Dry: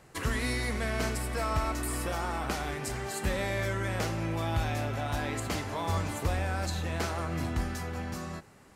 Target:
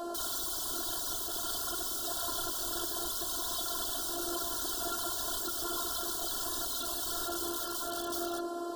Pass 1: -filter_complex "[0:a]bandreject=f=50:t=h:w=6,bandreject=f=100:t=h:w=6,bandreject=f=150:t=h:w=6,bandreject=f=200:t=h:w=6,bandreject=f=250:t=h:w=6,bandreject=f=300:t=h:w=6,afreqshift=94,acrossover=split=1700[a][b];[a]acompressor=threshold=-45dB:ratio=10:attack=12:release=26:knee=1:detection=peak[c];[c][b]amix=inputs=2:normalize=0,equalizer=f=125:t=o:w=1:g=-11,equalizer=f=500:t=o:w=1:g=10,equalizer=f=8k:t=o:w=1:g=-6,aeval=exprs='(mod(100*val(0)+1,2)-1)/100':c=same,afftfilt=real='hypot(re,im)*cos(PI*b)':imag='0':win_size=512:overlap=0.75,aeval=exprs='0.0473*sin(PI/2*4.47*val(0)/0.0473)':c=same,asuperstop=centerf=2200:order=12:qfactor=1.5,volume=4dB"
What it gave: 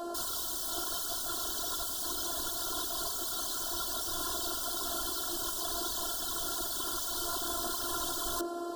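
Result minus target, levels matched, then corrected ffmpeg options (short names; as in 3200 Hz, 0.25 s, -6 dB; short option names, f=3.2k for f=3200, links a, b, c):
compressor: peak gain reduction -9 dB
-filter_complex "[0:a]bandreject=f=50:t=h:w=6,bandreject=f=100:t=h:w=6,bandreject=f=150:t=h:w=6,bandreject=f=200:t=h:w=6,bandreject=f=250:t=h:w=6,bandreject=f=300:t=h:w=6,afreqshift=94,acrossover=split=1700[a][b];[a]acompressor=threshold=-55dB:ratio=10:attack=12:release=26:knee=1:detection=peak[c];[c][b]amix=inputs=2:normalize=0,equalizer=f=125:t=o:w=1:g=-11,equalizer=f=500:t=o:w=1:g=10,equalizer=f=8k:t=o:w=1:g=-6,aeval=exprs='(mod(100*val(0)+1,2)-1)/100':c=same,afftfilt=real='hypot(re,im)*cos(PI*b)':imag='0':win_size=512:overlap=0.75,aeval=exprs='0.0473*sin(PI/2*4.47*val(0)/0.0473)':c=same,asuperstop=centerf=2200:order=12:qfactor=1.5,volume=4dB"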